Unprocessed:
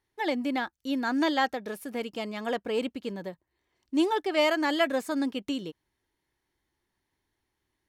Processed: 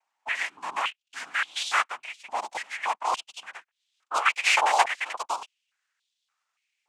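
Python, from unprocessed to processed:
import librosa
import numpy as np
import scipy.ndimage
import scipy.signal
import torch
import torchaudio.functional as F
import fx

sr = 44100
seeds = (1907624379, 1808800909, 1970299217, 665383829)

y = fx.speed_glide(x, sr, from_pct=68, to_pct=161)
y = fx.noise_vocoder(y, sr, seeds[0], bands=4)
y = fx.filter_held_highpass(y, sr, hz=3.5, low_hz=850.0, high_hz=3500.0)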